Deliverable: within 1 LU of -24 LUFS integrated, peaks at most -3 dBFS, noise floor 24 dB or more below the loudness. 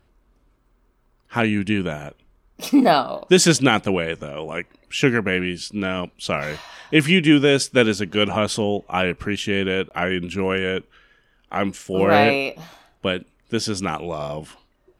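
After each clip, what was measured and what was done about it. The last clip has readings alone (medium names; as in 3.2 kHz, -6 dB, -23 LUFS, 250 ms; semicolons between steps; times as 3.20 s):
dropouts 1; longest dropout 19 ms; loudness -20.5 LUFS; peak level -2.5 dBFS; loudness target -24.0 LUFS
-> interpolate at 9.89 s, 19 ms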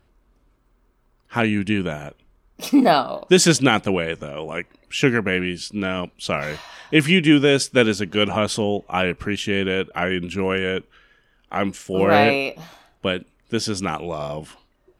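dropouts 0; loudness -20.5 LUFS; peak level -2.5 dBFS; loudness target -24.0 LUFS
-> trim -3.5 dB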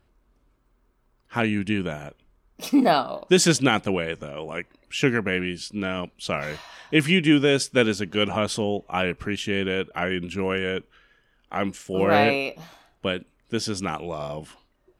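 loudness -24.0 LUFS; peak level -6.0 dBFS; noise floor -66 dBFS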